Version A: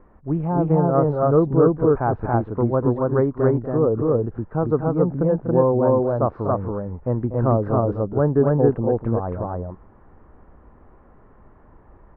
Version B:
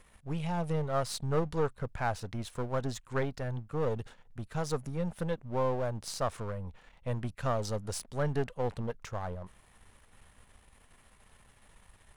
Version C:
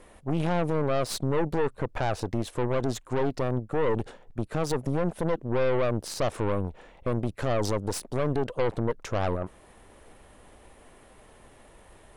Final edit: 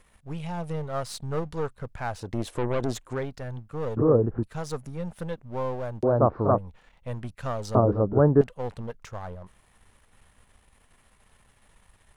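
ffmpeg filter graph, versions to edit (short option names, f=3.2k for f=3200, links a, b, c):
-filter_complex "[0:a]asplit=3[a][b][c];[1:a]asplit=5[d][e][f][g][h];[d]atrim=end=2.4[i];[2:a]atrim=start=2.16:end=3.26[j];[e]atrim=start=3.02:end=3.972[k];[a]atrim=start=3.968:end=4.432[l];[f]atrim=start=4.428:end=6.032[m];[b]atrim=start=6.028:end=6.582[n];[g]atrim=start=6.578:end=7.752[o];[c]atrim=start=7.748:end=8.412[p];[h]atrim=start=8.408[q];[i][j]acrossfade=d=0.24:c1=tri:c2=tri[r];[r][k]acrossfade=d=0.24:c1=tri:c2=tri[s];[s][l]acrossfade=d=0.004:c1=hsin:c2=hsin[t];[t][m]acrossfade=d=0.004:c1=hsin:c2=hsin[u];[u][n]acrossfade=d=0.004:c1=hsin:c2=hsin[v];[v][o]acrossfade=d=0.004:c1=hsin:c2=hsin[w];[w][p]acrossfade=d=0.004:c1=hsin:c2=hsin[x];[x][q]acrossfade=d=0.004:c1=hsin:c2=hsin"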